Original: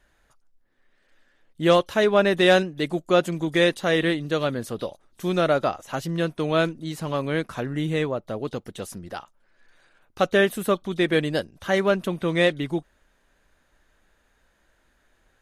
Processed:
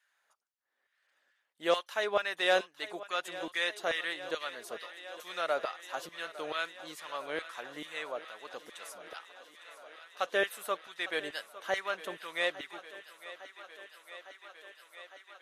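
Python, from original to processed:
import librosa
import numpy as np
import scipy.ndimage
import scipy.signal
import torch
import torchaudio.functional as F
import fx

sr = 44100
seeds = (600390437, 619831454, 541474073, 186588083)

y = fx.filter_lfo_highpass(x, sr, shape='saw_down', hz=2.3, low_hz=490.0, high_hz=1600.0, q=0.94)
y = fx.echo_thinned(y, sr, ms=856, feedback_pct=83, hz=270.0, wet_db=-15.5)
y = y * librosa.db_to_amplitude(-8.0)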